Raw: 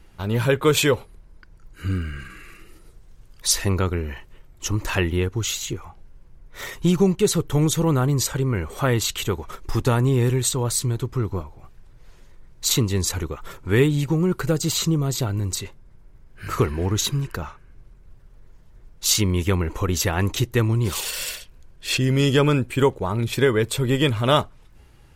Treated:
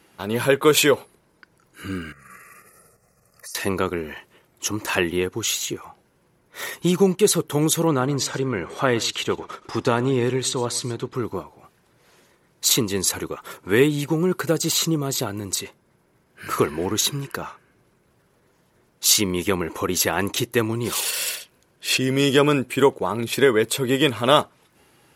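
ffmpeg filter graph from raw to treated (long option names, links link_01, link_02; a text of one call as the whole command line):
ffmpeg -i in.wav -filter_complex "[0:a]asettb=1/sr,asplit=3[link_01][link_02][link_03];[link_01]atrim=end=2.124[link_04];[link_02]atrim=start=2.12:end=3.55,asetpts=PTS-STARTPTS,afade=type=in:duration=0.004:curve=qsin,afade=type=out:start_time=1.426:duration=0.004:curve=qsin,asuperstop=centerf=3400:order=4:qfactor=1.3,aecho=1:1:1.6:0.87,atrim=end_sample=63063,acompressor=threshold=-38dB:ratio=16:attack=3.2:release=140:knee=1:detection=peak[link_05];[link_03]atrim=start=3.546[link_06];[link_04][link_05]acrossfade=duration=0.004:curve1=hsin:curve2=qsin[link_07];[link_07][link_06]acrossfade=duration=0.004:curve1=qsin:curve2=hsin,asettb=1/sr,asplit=3[link_08][link_09][link_10];[link_08]atrim=end=7.874[link_11];[link_09]atrim=start=7.87:end=11.15,asetpts=PTS-STARTPTS,afade=type=in:duration=0.004:curve=qsin,afade=type=out:start_time=3.276:duration=0.004:curve=qsin,lowpass=5900,aecho=1:1:121:0.106,atrim=end_sample=144648[link_12];[link_10]atrim=start=11.146[link_13];[link_11][link_12]acrossfade=duration=0.004:curve1=hsin:curve2=qsin[link_14];[link_14][link_13]acrossfade=duration=0.004:curve1=qsin:curve2=hsin,highpass=220,equalizer=frequency=11000:width=5.2:gain=9,volume=2.5dB" out.wav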